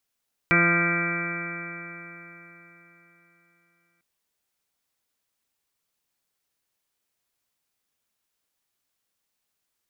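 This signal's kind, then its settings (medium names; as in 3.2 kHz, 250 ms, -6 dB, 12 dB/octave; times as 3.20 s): stretched partials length 3.50 s, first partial 170 Hz, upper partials -2/-9/-9/-18.5/-13/-5.5/-1/-1/-17/-1/-12.5/4 dB, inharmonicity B 0.00066, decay 3.87 s, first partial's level -23.5 dB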